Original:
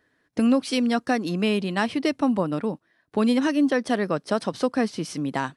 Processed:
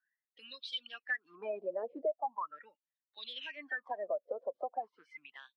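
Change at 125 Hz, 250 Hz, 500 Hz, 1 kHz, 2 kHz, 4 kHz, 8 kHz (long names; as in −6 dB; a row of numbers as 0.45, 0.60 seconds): below −40 dB, −35.0 dB, −13.0 dB, −11.5 dB, −10.0 dB, −10.0 dB, below −30 dB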